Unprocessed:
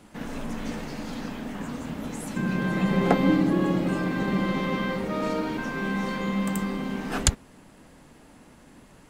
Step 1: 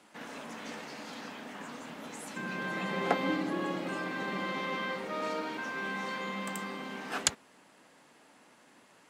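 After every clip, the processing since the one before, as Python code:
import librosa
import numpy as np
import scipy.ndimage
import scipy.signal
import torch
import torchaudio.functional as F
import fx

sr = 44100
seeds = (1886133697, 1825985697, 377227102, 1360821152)

y = fx.weighting(x, sr, curve='A')
y = F.gain(torch.from_numpy(y), -4.0).numpy()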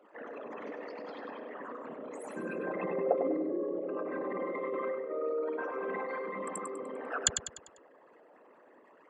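y = fx.envelope_sharpen(x, sr, power=3.0)
y = fx.echo_feedback(y, sr, ms=99, feedback_pct=42, wet_db=-7.5)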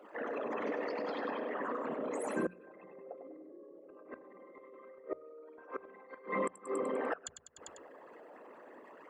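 y = fx.gate_flip(x, sr, shuts_db=-28.0, range_db=-25)
y = fx.hum_notches(y, sr, base_hz=60, count=3)
y = F.gain(torch.from_numpy(y), 5.5).numpy()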